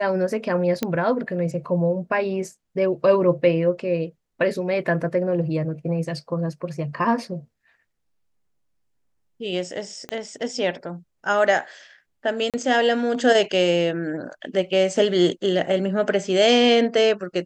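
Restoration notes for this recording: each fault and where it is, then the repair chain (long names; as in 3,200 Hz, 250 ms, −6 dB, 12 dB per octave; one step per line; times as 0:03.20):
0:00.83: click −9 dBFS
0:10.09: click −17 dBFS
0:12.50–0:12.54: drop-out 37 ms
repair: click removal
repair the gap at 0:12.50, 37 ms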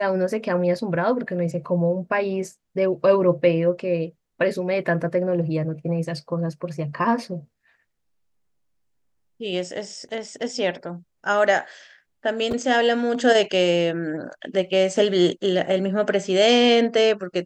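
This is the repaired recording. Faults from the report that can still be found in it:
0:10.09: click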